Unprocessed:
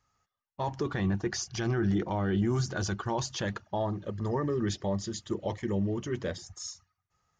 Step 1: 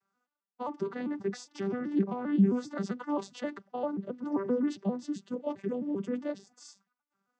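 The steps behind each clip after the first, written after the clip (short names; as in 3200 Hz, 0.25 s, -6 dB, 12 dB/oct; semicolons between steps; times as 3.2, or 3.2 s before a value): arpeggiated vocoder major triad, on G3, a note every 0.132 s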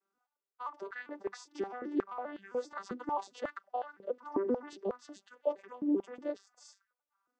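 stepped high-pass 5.5 Hz 320–1600 Hz; gain -5.5 dB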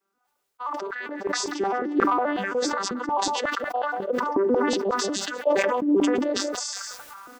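echo 0.187 s -18.5 dB; sustainer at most 21 dB/s; gain +8 dB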